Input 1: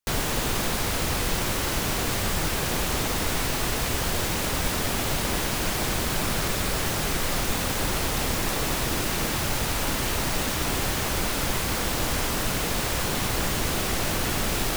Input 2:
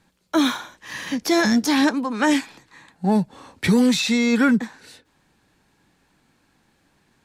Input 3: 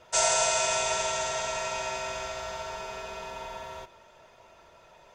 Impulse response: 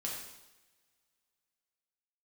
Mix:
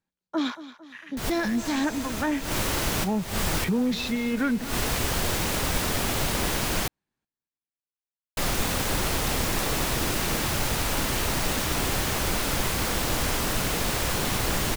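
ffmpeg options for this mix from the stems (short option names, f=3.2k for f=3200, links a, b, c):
-filter_complex "[0:a]adelay=1100,volume=0dB,asplit=3[a][b][c];[a]atrim=end=6.88,asetpts=PTS-STARTPTS,afade=t=out:st=6.876:d=0.004:c=hsin[d];[b]atrim=start=6.88:end=8.37,asetpts=PTS-STARTPTS,volume=0[e];[c]atrim=start=8.37,asetpts=PTS-STARTPTS,afade=t=in:d=0.004:c=hsin[f];[d][e][f]concat=n=3:v=0:a=1[g];[1:a]afwtdn=0.0398,volume=-8dB,asplit=3[h][i][j];[i]volume=-15.5dB[k];[2:a]adelay=1450,volume=-16.5dB[l];[j]apad=whole_len=699636[m];[g][m]sidechaincompress=threshold=-41dB:ratio=8:attack=34:release=155[n];[k]aecho=0:1:226|452|678|904|1130|1356|1582:1|0.5|0.25|0.125|0.0625|0.0312|0.0156[o];[n][h][l][o]amix=inputs=4:normalize=0"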